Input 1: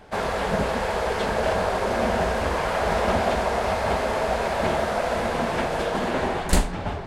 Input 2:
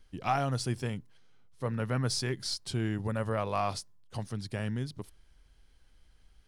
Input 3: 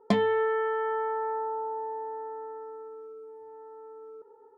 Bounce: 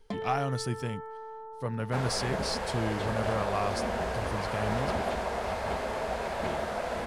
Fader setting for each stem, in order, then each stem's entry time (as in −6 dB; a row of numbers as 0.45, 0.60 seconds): −8.5, −0.5, −12.0 decibels; 1.80, 0.00, 0.00 seconds